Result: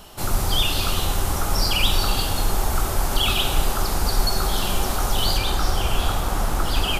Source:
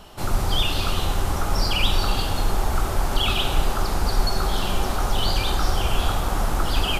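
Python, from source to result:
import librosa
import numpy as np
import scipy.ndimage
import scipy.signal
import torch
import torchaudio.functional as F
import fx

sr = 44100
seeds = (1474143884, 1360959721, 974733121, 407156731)

y = fx.high_shelf(x, sr, hz=6100.0, db=fx.steps((0.0, 10.0), (5.36, 4.0)))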